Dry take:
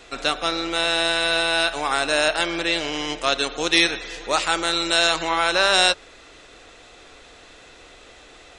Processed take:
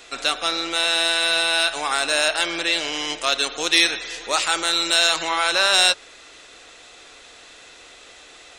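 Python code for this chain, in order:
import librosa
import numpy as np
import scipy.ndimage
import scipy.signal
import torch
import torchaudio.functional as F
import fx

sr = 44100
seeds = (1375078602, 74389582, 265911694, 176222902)

p1 = fx.tilt_eq(x, sr, slope=2.0)
p2 = 10.0 ** (-16.0 / 20.0) * np.tanh(p1 / 10.0 ** (-16.0 / 20.0))
p3 = p1 + (p2 * 10.0 ** (-6.5 / 20.0))
y = p3 * 10.0 ** (-3.5 / 20.0)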